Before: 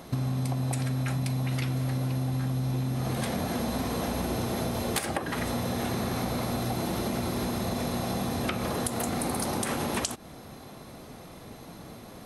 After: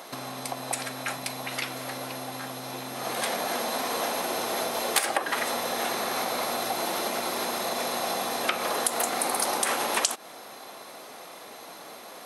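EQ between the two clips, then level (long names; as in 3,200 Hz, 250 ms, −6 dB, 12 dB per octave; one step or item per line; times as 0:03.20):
high-pass filter 580 Hz 12 dB per octave
+6.5 dB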